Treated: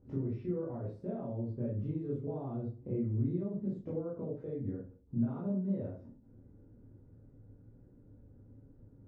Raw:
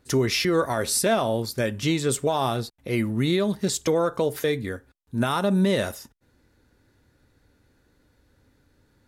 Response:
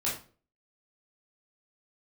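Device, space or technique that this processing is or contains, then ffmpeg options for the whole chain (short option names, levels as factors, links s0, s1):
television next door: -filter_complex "[0:a]acompressor=threshold=0.01:ratio=4,lowpass=390[s0];[1:a]atrim=start_sample=2205[s1];[s0][s1]afir=irnorm=-1:irlink=0"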